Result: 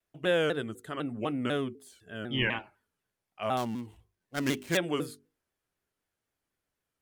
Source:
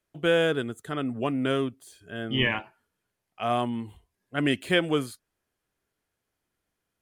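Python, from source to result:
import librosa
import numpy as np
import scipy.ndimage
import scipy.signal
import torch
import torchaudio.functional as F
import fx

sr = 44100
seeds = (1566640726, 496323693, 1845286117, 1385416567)

y = fx.dead_time(x, sr, dead_ms=0.12, at=(3.57, 4.77))
y = fx.hum_notches(y, sr, base_hz=50, count=9)
y = fx.vibrato_shape(y, sr, shape='saw_down', rate_hz=4.0, depth_cents=160.0)
y = F.gain(torch.from_numpy(y), -4.0).numpy()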